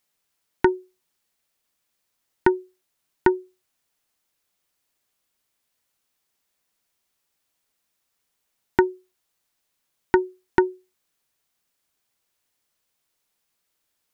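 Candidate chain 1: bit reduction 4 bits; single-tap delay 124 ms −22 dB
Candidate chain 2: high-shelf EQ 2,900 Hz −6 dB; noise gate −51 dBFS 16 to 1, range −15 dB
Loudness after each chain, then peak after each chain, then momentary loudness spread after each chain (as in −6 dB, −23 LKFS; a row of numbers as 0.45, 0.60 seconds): −24.0, −25.0 LKFS; −3.0, −3.0 dBFS; 5, 6 LU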